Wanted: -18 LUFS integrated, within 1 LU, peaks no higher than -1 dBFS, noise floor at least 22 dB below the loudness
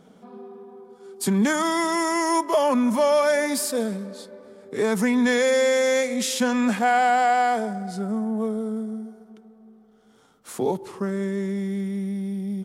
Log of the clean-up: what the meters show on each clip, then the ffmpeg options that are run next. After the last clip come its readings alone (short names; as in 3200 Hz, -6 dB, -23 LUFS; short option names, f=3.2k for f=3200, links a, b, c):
loudness -23.0 LUFS; peak -9.0 dBFS; loudness target -18.0 LUFS
-> -af "volume=5dB"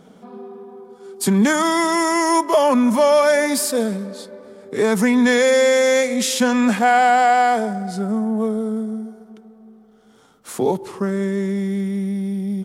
loudness -18.0 LUFS; peak -4.0 dBFS; noise floor -49 dBFS